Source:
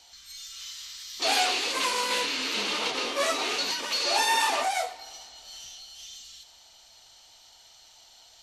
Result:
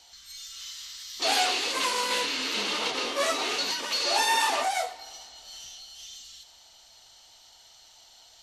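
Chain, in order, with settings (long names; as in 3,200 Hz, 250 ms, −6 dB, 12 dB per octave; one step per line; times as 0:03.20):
notch filter 2,400 Hz, Q 24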